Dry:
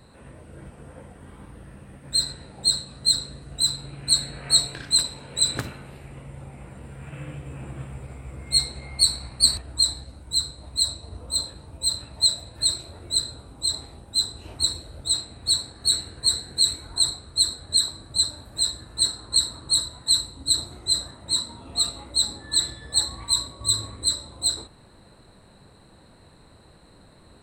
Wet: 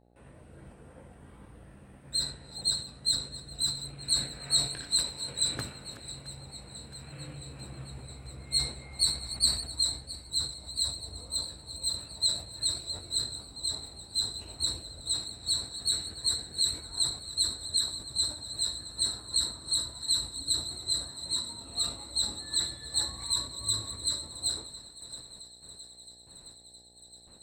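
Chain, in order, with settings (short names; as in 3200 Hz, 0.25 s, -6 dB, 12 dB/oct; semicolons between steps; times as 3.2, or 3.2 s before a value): reverse delay 0.34 s, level -12.5 dB; gate with hold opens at -41 dBFS; buzz 60 Hz, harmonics 14, -57 dBFS -3 dB/oct; thinning echo 0.667 s, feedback 77%, high-pass 1200 Hz, level -16 dB; sustainer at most 120 dB/s; gain -8 dB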